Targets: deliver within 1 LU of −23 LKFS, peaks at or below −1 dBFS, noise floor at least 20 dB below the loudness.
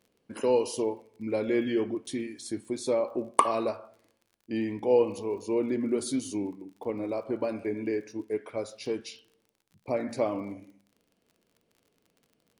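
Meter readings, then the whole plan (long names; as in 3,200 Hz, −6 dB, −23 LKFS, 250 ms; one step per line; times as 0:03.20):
crackle rate 38 per second; integrated loudness −30.5 LKFS; sample peak −3.5 dBFS; target loudness −23.0 LKFS
→ click removal
level +7.5 dB
brickwall limiter −1 dBFS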